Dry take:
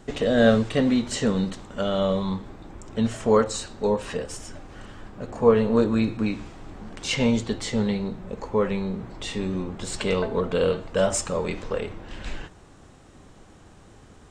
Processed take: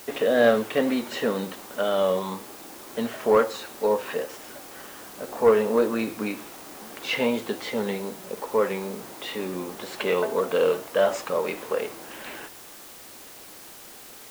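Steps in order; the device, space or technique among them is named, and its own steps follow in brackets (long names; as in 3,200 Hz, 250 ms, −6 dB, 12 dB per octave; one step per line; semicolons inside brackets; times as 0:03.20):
tape answering machine (band-pass filter 360–3,000 Hz; soft clipping −12 dBFS, distortion −20 dB; tape wow and flutter; white noise bed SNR 19 dB)
level +3 dB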